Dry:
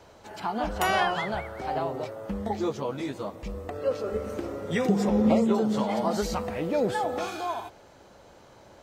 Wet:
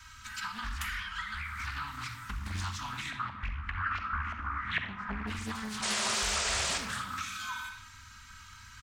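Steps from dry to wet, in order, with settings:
elliptic band-stop filter 180–1,300 Hz, stop band 50 dB
low-shelf EQ 390 Hz −5.5 dB
comb filter 3.2 ms, depth 83%
dynamic equaliser 240 Hz, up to −4 dB, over −50 dBFS, Q 1.1
downward compressor 8 to 1, threshold −42 dBFS, peak gain reduction 18 dB
0:03.10–0:05.26: auto-filter low-pass saw up 6.4 Hz → 1.3 Hz 750–2,700 Hz
0:05.82–0:06.78: sound drawn into the spectrogram noise 370–8,600 Hz −39 dBFS
convolution reverb RT60 0.95 s, pre-delay 3 ms, DRR 1.5 dB
highs frequency-modulated by the lows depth 0.77 ms
level +5.5 dB

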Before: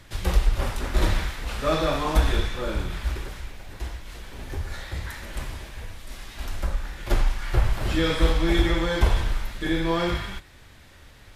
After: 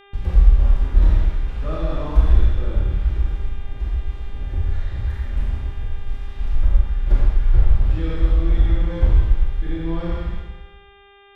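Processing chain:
speech leveller within 3 dB 2 s
RIAA equalisation playback
noise gate −25 dBFS, range −28 dB
four-comb reverb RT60 1.1 s, combs from 27 ms, DRR −2 dB
hum with harmonics 400 Hz, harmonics 9, −38 dBFS −3 dB per octave
level −11.5 dB

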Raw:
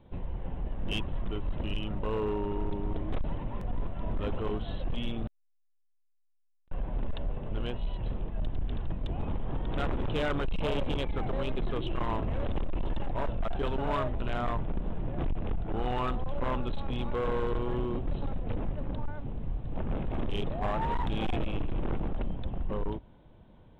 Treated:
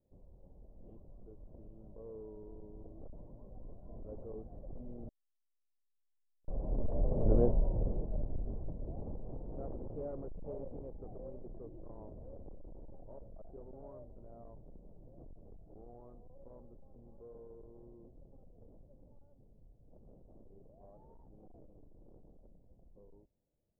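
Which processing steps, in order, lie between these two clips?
source passing by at 0:07.37, 12 m/s, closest 3.2 metres
transistor ladder low-pass 690 Hz, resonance 40%
level +14 dB

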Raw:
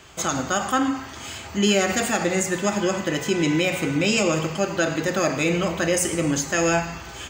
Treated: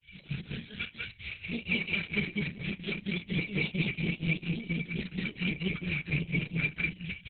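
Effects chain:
loose part that buzzes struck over −25 dBFS, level −23 dBFS
brick-wall band-stop 200–1,400 Hz
flat-topped bell 1,300 Hz −13 dB
brickwall limiter −19 dBFS, peak gain reduction 7.5 dB
granular cloud 100 ms, grains 20 per second, spray 18 ms, pitch spread up and down by 3 semitones
tube saturation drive 25 dB, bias 0.35
hollow resonant body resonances 430/2,300 Hz, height 18 dB, ringing for 25 ms
granular cloud 241 ms, grains 4.3 per second, pitch spread up and down by 0 semitones
high-frequency loss of the air 140 metres
loudspeakers that aren't time-aligned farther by 12 metres −9 dB, 68 metres 0 dB
Opus 6 kbit/s 48,000 Hz

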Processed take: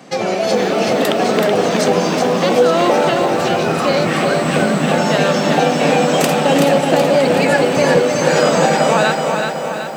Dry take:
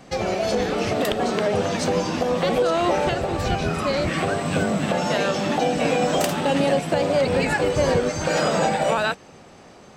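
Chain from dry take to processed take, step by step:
high-pass filter 150 Hz 24 dB per octave
on a send: tape delay 315 ms, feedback 71%, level −10 dB, low-pass 2,200 Hz
on the sum: feedback echo at a low word length 377 ms, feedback 55%, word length 8 bits, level −5 dB
level +6 dB

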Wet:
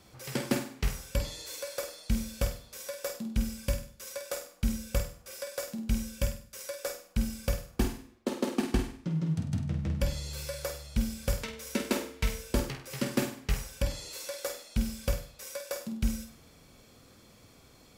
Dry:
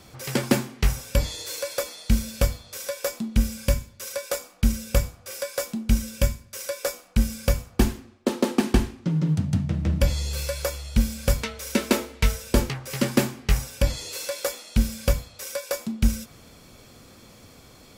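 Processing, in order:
flutter between parallel walls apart 8.4 metres, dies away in 0.41 s
level −8.5 dB

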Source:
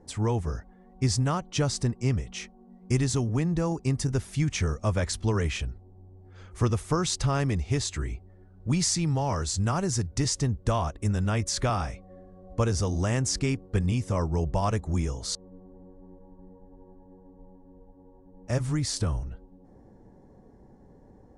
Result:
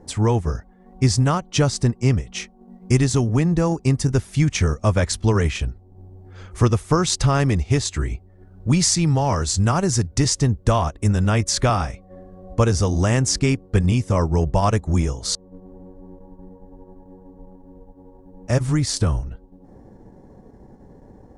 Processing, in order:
transient designer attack 0 dB, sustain −6 dB
level +8 dB

